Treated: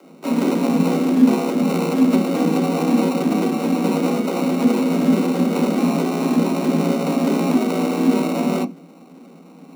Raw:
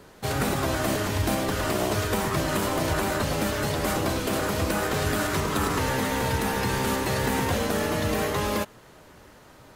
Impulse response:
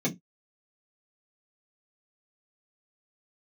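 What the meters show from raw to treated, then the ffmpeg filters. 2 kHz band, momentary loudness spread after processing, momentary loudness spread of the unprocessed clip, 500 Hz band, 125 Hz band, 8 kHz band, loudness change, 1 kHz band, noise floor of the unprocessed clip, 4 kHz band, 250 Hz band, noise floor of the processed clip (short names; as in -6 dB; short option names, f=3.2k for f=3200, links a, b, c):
-3.5 dB, 4 LU, 1 LU, +5.5 dB, +2.0 dB, -4.0 dB, +7.0 dB, +1.5 dB, -51 dBFS, -2.0 dB, +13.5 dB, -44 dBFS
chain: -filter_complex "[0:a]acrusher=samples=28:mix=1:aa=0.000001,afreqshift=160,asplit=2[a][b];[1:a]atrim=start_sample=2205,lowshelf=f=380:g=10,adelay=10[c];[b][c]afir=irnorm=-1:irlink=0,volume=-15dB[d];[a][d]amix=inputs=2:normalize=0,volume=-1dB"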